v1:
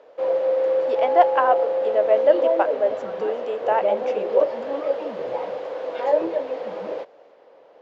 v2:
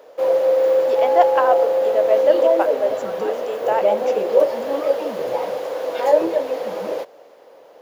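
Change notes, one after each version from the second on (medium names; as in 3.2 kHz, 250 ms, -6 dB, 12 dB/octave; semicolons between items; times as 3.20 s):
background +4.5 dB; master: remove low-pass 3.5 kHz 12 dB/octave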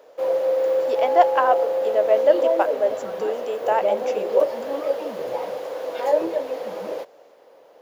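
background -4.5 dB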